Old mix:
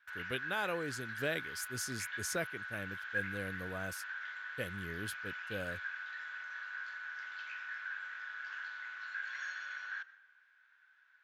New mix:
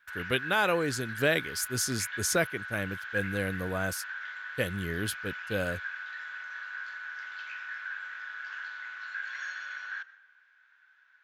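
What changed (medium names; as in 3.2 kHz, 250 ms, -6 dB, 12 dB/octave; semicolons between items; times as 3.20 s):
speech +10.0 dB; background +4.0 dB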